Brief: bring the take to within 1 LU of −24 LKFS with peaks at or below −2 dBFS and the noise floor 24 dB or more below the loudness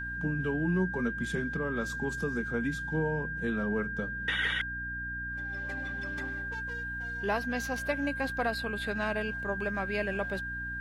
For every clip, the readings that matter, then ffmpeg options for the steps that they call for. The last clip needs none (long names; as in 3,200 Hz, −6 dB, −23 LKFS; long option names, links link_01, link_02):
mains hum 60 Hz; hum harmonics up to 300 Hz; level of the hum −40 dBFS; interfering tone 1,600 Hz; level of the tone −35 dBFS; integrated loudness −32.5 LKFS; sample peak −18.0 dBFS; target loudness −24.0 LKFS
→ -af "bandreject=frequency=60:width_type=h:width=6,bandreject=frequency=120:width_type=h:width=6,bandreject=frequency=180:width_type=h:width=6,bandreject=frequency=240:width_type=h:width=6,bandreject=frequency=300:width_type=h:width=6"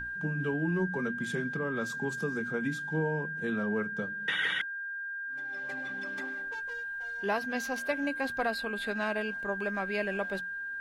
mains hum none found; interfering tone 1,600 Hz; level of the tone −35 dBFS
→ -af "bandreject=frequency=1600:width=30"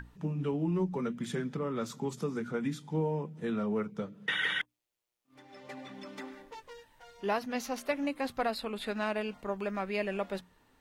interfering tone none found; integrated loudness −34.5 LKFS; sample peak −20.0 dBFS; target loudness −24.0 LKFS
→ -af "volume=10.5dB"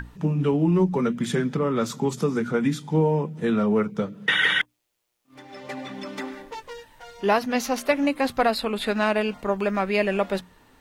integrated loudness −24.0 LKFS; sample peak −9.5 dBFS; background noise floor −72 dBFS